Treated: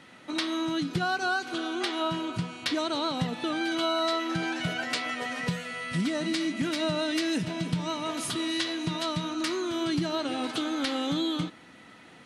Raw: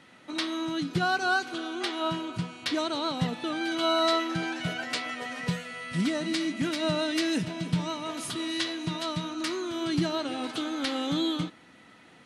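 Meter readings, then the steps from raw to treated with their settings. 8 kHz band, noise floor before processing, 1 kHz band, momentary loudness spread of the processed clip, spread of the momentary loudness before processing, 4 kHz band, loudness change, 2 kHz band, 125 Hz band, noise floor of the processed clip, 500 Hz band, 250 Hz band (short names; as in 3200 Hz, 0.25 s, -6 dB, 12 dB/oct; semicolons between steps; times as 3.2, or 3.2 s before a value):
+1.0 dB, -55 dBFS, -0.5 dB, 4 LU, 7 LU, 0.0 dB, 0.0 dB, 0.0 dB, -0.5 dB, -52 dBFS, 0.0 dB, +0.5 dB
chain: compressor 3:1, threshold -29 dBFS, peak gain reduction 6.5 dB; gain +3 dB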